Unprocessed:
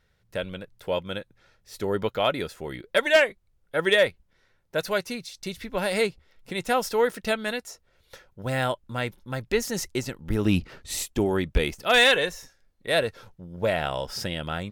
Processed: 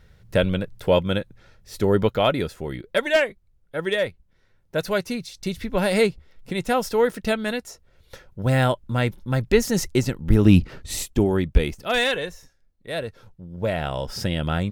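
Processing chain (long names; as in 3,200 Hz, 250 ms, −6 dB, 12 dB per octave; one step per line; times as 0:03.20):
speech leveller 2 s
low-shelf EQ 330 Hz +9 dB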